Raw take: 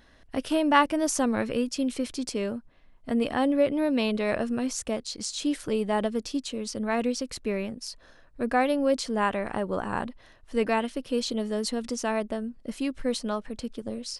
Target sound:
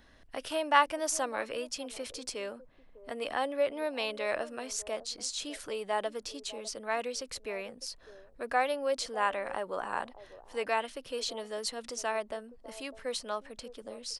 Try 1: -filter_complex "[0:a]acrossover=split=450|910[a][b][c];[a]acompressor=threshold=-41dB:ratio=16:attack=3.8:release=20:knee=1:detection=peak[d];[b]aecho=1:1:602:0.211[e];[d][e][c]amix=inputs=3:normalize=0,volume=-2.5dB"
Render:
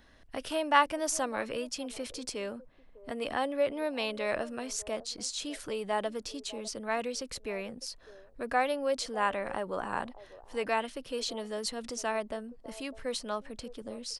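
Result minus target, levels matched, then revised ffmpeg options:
compressor: peak gain reduction -9.5 dB
-filter_complex "[0:a]acrossover=split=450|910[a][b][c];[a]acompressor=threshold=-51dB:ratio=16:attack=3.8:release=20:knee=1:detection=peak[d];[b]aecho=1:1:602:0.211[e];[d][e][c]amix=inputs=3:normalize=0,volume=-2.5dB"

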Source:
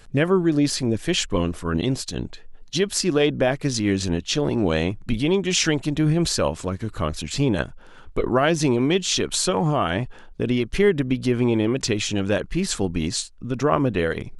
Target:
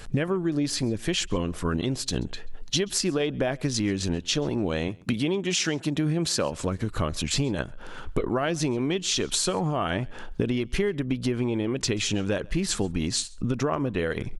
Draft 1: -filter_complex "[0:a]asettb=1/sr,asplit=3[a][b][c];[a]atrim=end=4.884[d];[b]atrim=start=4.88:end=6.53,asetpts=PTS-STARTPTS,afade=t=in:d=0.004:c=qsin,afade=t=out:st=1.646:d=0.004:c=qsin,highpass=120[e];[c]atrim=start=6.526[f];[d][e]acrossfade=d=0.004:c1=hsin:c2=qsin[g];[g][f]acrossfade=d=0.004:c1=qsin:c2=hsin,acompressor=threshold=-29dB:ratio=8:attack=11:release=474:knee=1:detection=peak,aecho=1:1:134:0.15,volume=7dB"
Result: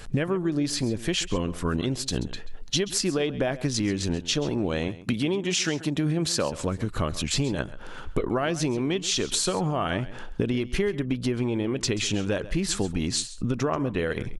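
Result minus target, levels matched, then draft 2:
echo-to-direct +9.5 dB
-filter_complex "[0:a]asettb=1/sr,asplit=3[a][b][c];[a]atrim=end=4.884[d];[b]atrim=start=4.88:end=6.53,asetpts=PTS-STARTPTS,afade=t=in:d=0.004:c=qsin,afade=t=out:st=1.646:d=0.004:c=qsin,highpass=120[e];[c]atrim=start=6.526[f];[d][e]acrossfade=d=0.004:c1=hsin:c2=qsin[g];[g][f]acrossfade=d=0.004:c1=qsin:c2=hsin,acompressor=threshold=-29dB:ratio=8:attack=11:release=474:knee=1:detection=peak,aecho=1:1:134:0.0501,volume=7dB"

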